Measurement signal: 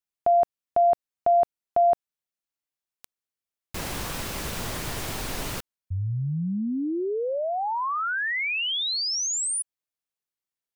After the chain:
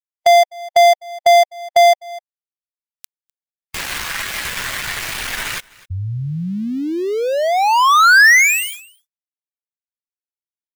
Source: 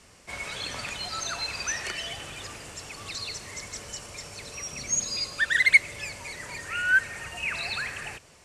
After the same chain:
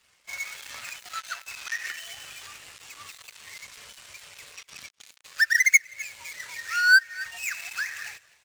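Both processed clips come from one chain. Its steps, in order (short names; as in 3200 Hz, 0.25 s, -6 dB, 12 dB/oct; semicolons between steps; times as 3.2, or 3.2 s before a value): switching dead time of 0.13 ms; dynamic EQ 1800 Hz, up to +5 dB, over -43 dBFS, Q 1.6; on a send: echo 0.253 s -20 dB; on the sum: compressor 2:1, threshold -39 dBFS; tilt shelf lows -8 dB; spectral expander 1.5:1; gain +7.5 dB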